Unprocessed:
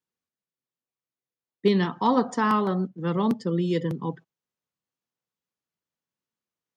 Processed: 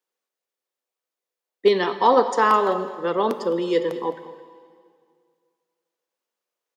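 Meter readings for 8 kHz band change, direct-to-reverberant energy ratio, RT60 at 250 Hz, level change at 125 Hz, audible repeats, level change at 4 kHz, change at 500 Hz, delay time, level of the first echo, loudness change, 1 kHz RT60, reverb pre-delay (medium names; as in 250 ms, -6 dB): no reading, 10.0 dB, 2.1 s, -11.5 dB, 1, +5.0 dB, +7.5 dB, 212 ms, -16.0 dB, +4.0 dB, 2.1 s, 6 ms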